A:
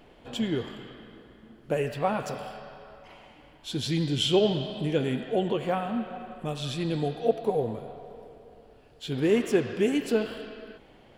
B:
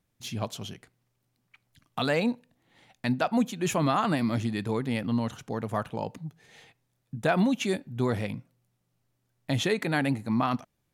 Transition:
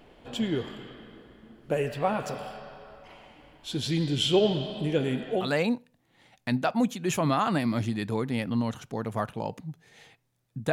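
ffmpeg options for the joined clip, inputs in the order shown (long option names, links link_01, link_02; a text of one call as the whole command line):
ffmpeg -i cue0.wav -i cue1.wav -filter_complex "[0:a]apad=whole_dur=10.72,atrim=end=10.72,atrim=end=5.53,asetpts=PTS-STARTPTS[link_01];[1:a]atrim=start=1.9:end=7.29,asetpts=PTS-STARTPTS[link_02];[link_01][link_02]acrossfade=duration=0.2:curve1=tri:curve2=tri" out.wav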